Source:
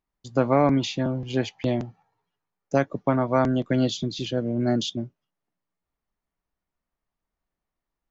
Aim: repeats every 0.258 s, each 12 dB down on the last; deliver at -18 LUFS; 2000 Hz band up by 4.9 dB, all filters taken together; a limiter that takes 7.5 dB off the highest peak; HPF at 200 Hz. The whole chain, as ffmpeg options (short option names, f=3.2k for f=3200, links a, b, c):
-af "highpass=200,equalizer=f=2k:t=o:g=6.5,alimiter=limit=-15dB:level=0:latency=1,aecho=1:1:258|516|774:0.251|0.0628|0.0157,volume=9.5dB"